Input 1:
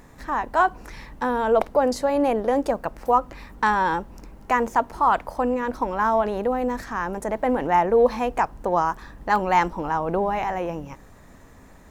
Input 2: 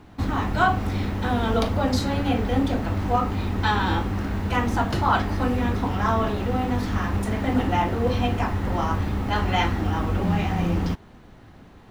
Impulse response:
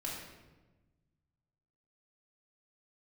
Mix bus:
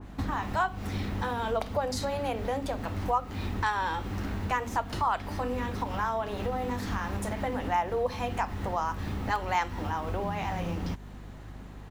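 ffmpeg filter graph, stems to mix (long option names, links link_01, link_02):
-filter_complex "[0:a]highpass=510,volume=-8.5dB,asplit=2[link_01][link_02];[1:a]acompressor=threshold=-29dB:ratio=6,adelay=1.1,volume=-0.5dB[link_03];[link_02]apad=whole_len=525019[link_04];[link_03][link_04]sidechaincompress=threshold=-34dB:ratio=8:attack=40:release=298[link_05];[link_01][link_05]amix=inputs=2:normalize=0,aeval=exprs='val(0)+0.00631*(sin(2*PI*50*n/s)+sin(2*PI*2*50*n/s)/2+sin(2*PI*3*50*n/s)/3+sin(2*PI*4*50*n/s)/4+sin(2*PI*5*50*n/s)/5)':channel_layout=same,adynamicequalizer=threshold=0.00891:dfrequency=2200:dqfactor=0.7:tfrequency=2200:tqfactor=0.7:attack=5:release=100:ratio=0.375:range=2.5:mode=boostabove:tftype=highshelf"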